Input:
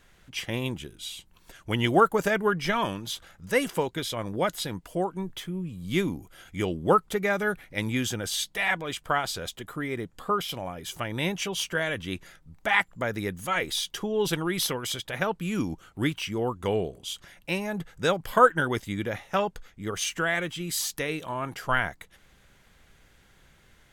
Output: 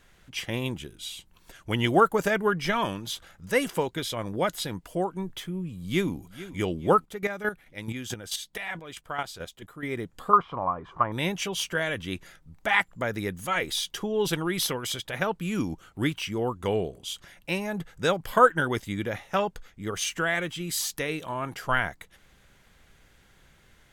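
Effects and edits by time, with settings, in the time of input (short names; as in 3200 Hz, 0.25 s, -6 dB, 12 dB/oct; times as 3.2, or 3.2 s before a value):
5.6–6.16 echo throw 0.44 s, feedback 40%, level -15.5 dB
7.01–9.83 chopper 4.6 Hz, depth 65%, duty 20%
10.33–11.12 synth low-pass 1100 Hz, resonance Q 8.9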